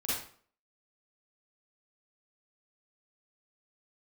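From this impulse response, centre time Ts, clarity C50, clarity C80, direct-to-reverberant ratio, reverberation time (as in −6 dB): 65 ms, −3.0 dB, 5.0 dB, −9.0 dB, 0.50 s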